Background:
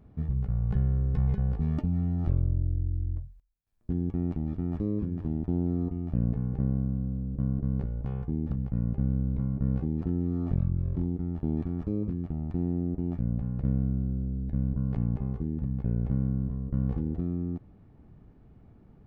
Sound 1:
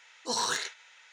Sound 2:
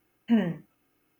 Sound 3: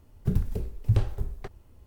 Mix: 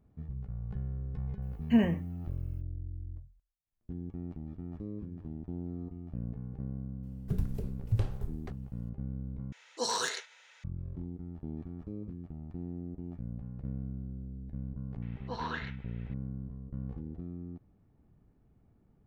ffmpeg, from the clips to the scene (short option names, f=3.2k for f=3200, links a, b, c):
-filter_complex "[1:a]asplit=2[a][b];[0:a]volume=-11dB[c];[a]equalizer=f=490:t=o:w=0.76:g=5.5[d];[b]lowpass=f=2.9k:w=0.5412,lowpass=f=2.9k:w=1.3066[e];[c]asplit=2[f][g];[f]atrim=end=9.524[h];[d]atrim=end=1.12,asetpts=PTS-STARTPTS,volume=-3dB[i];[g]atrim=start=10.636[j];[2:a]atrim=end=1.19,asetpts=PTS-STARTPTS,volume=-1dB,afade=t=in:d=0.004:c=hsin,afade=t=out:st=1.186:d=0.004:c=hsin,adelay=1420[k];[3:a]atrim=end=1.86,asetpts=PTS-STARTPTS,volume=-6.5dB,afade=t=in:d=0.004:c=hsin,afade=t=out:st=1.856:d=0.004:c=hsin,adelay=7030[l];[e]atrim=end=1.12,asetpts=PTS-STARTPTS,volume=-5dB,afade=t=in:d=0.004:c=hsin,afade=t=out:st=1.116:d=0.004:c=hsin,adelay=15020[m];[h][i]acrossfade=d=0.004:c1=hsin:c2=hsin[n];[n][j]acrossfade=d=0.004:c1=hsin:c2=hsin[o];[o][k][l][m]amix=inputs=4:normalize=0"